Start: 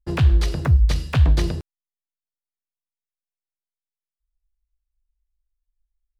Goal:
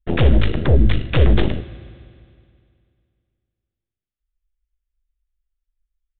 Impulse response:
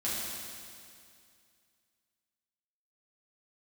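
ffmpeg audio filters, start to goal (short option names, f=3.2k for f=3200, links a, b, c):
-filter_complex "[0:a]asuperstop=centerf=820:order=12:qfactor=1.3,aeval=exprs='0.447*(cos(1*acos(clip(val(0)/0.447,-1,1)))-cos(1*PI/2))+0.141*(cos(8*acos(clip(val(0)/0.447,-1,1)))-cos(8*PI/2))':c=same,aresample=8000,aresample=44100,asplit=2[a][b];[1:a]atrim=start_sample=2205[c];[b][c]afir=irnorm=-1:irlink=0,volume=-20dB[d];[a][d]amix=inputs=2:normalize=0"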